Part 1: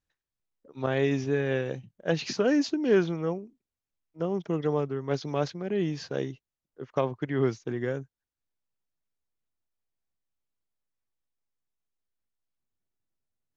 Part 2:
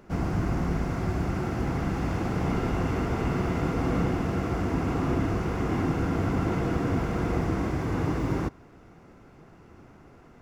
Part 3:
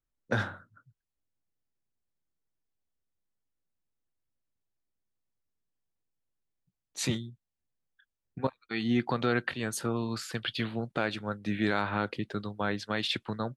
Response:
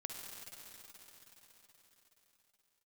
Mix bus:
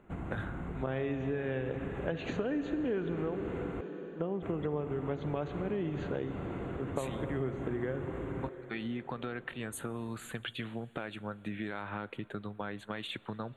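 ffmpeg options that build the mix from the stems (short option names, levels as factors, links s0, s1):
-filter_complex "[0:a]highshelf=f=5900:g=-10.5,volume=0.944,asplit=2[s0][s1];[s1]volume=0.596[s2];[1:a]lowpass=7300,acompressor=threshold=0.0398:ratio=6,volume=0.422,asplit=3[s3][s4][s5];[s3]atrim=end=3.81,asetpts=PTS-STARTPTS,afade=t=out:st=3.806:d=0.004:c=hsin[s6];[s4]atrim=start=3.81:end=4.42,asetpts=PTS-STARTPTS,volume=0[s7];[s5]atrim=start=4.42,asetpts=PTS-STARTPTS,afade=t=in:d=0.004:c=hsin[s8];[s6][s7][s8]concat=n=3:v=0:a=1[s9];[2:a]acompressor=threshold=0.0224:ratio=4,volume=0.794,asplit=3[s10][s11][s12];[s11]volume=0.141[s13];[s12]apad=whole_len=598002[s14];[s0][s14]sidechaincompress=threshold=0.00708:ratio=8:attack=16:release=893[s15];[s15][s9]amix=inputs=2:normalize=0,acompressor=threshold=0.0398:ratio=6,volume=1[s16];[3:a]atrim=start_sample=2205[s17];[s2][s13]amix=inputs=2:normalize=0[s18];[s18][s17]afir=irnorm=-1:irlink=0[s19];[s10][s16][s19]amix=inputs=3:normalize=0,asuperstop=centerf=5200:order=4:qfactor=1.3,acompressor=threshold=0.0251:ratio=3"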